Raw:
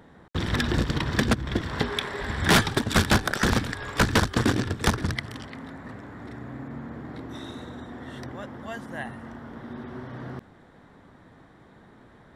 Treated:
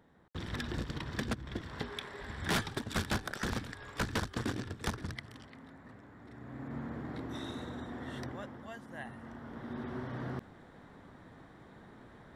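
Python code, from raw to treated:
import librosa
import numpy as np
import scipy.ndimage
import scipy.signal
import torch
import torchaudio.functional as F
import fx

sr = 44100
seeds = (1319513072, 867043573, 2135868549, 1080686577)

y = fx.gain(x, sr, db=fx.line((6.26, -13.0), (6.77, -3.0), (8.21, -3.0), (8.8, -11.5), (9.86, -2.0)))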